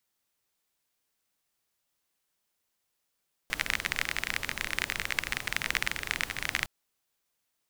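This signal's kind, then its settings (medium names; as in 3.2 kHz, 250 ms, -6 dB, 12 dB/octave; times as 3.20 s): rain from filtered ticks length 3.16 s, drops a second 28, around 2 kHz, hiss -9 dB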